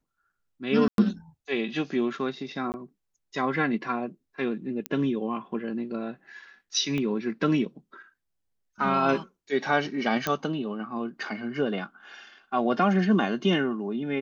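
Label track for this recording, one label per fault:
0.880000	0.980000	dropout 102 ms
2.720000	2.740000	dropout 19 ms
4.860000	4.860000	pop -13 dBFS
6.980000	6.980000	pop -19 dBFS
10.270000	10.270000	pop -11 dBFS

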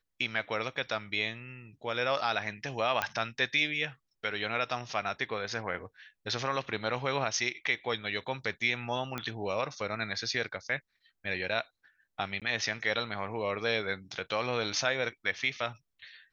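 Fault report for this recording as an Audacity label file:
3.020000	3.020000	pop -13 dBFS
9.180000	9.180000	pop -19 dBFS
12.400000	12.420000	dropout 17 ms

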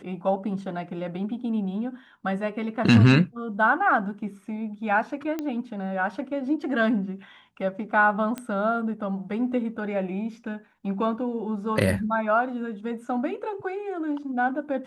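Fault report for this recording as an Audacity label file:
5.390000	5.390000	pop -17 dBFS
8.380000	8.380000	pop -18 dBFS

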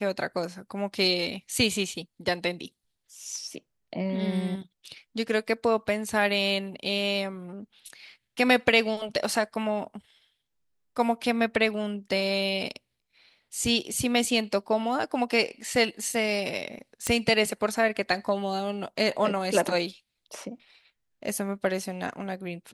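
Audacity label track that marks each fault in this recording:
17.070000	17.070000	pop -11 dBFS

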